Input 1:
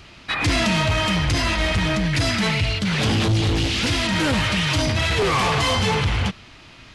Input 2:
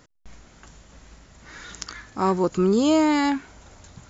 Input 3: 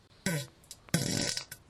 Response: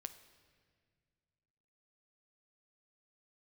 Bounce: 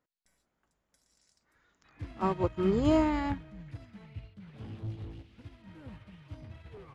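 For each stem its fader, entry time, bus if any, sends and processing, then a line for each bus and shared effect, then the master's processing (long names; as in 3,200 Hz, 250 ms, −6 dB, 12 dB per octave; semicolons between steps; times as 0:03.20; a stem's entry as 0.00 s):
−16.0 dB, 1.55 s, no send, low-shelf EQ 400 Hz +7 dB
−3.0 dB, 0.00 s, no send, low-shelf EQ 160 Hz −11 dB
+1.0 dB, 0.00 s, no send, resonant band-pass 7,000 Hz, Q 1.9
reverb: not used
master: parametric band 6,600 Hz −13.5 dB 2.3 octaves; expander for the loud parts 2.5 to 1, over −36 dBFS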